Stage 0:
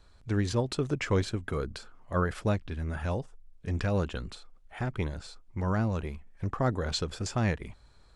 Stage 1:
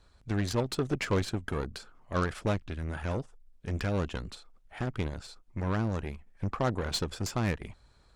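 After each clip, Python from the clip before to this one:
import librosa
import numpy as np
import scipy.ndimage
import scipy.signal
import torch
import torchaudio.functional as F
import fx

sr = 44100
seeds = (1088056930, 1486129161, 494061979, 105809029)

y = fx.hpss(x, sr, part='harmonic', gain_db=-3)
y = fx.cheby_harmonics(y, sr, harmonics=(8,), levels_db=(-21,), full_scale_db=-16.5)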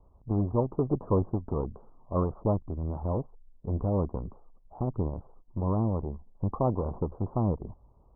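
y = scipy.signal.sosfilt(scipy.signal.butter(12, 1100.0, 'lowpass', fs=sr, output='sos'), x)
y = y * librosa.db_to_amplitude(3.0)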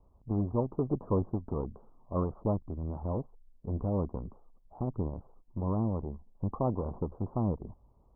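y = fx.peak_eq(x, sr, hz=230.0, db=2.5, octaves=0.77)
y = y * librosa.db_to_amplitude(-4.0)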